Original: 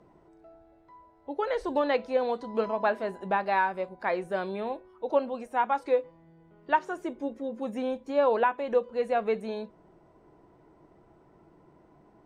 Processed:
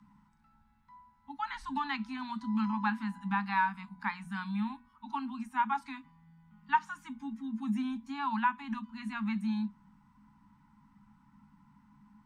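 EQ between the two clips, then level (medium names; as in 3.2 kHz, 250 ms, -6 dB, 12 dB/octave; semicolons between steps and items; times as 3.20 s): Chebyshev band-stop 270–850 Hz, order 5; peaking EQ 210 Hz +12 dB 0.24 oct; hum notches 60/120/180/240 Hz; -1.5 dB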